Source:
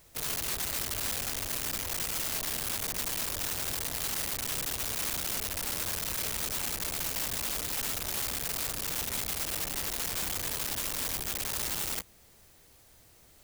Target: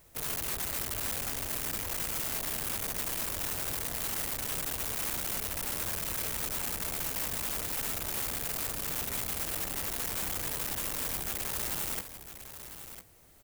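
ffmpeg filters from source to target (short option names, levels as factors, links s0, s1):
-filter_complex "[0:a]equalizer=f=4600:w=0.74:g=-5,asplit=2[s0][s1];[s1]aecho=0:1:1002:0.266[s2];[s0][s2]amix=inputs=2:normalize=0"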